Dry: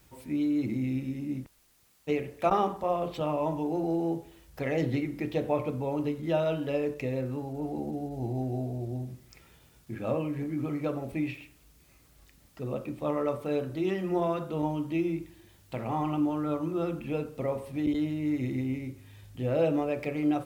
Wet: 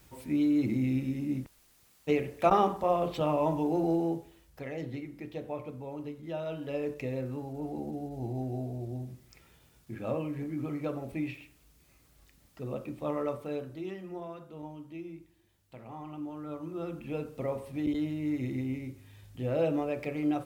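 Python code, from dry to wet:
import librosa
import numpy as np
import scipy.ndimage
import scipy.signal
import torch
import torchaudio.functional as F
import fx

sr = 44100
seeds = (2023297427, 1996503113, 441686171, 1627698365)

y = fx.gain(x, sr, db=fx.line((3.9, 1.5), (4.74, -9.5), (6.36, -9.5), (6.89, -3.0), (13.25, -3.0), (14.25, -13.5), (16.03, -13.5), (17.3, -2.5)))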